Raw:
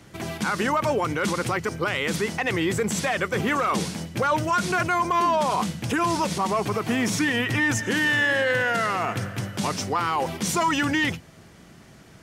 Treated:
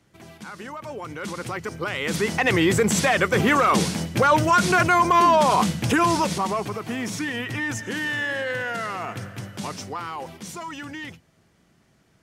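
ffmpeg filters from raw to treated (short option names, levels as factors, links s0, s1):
-af "volume=1.78,afade=t=in:st=0.83:d=1.16:silence=0.281838,afade=t=in:st=1.99:d=0.47:silence=0.446684,afade=t=out:st=5.86:d=0.9:silence=0.316228,afade=t=out:st=9.57:d=1.04:silence=0.421697"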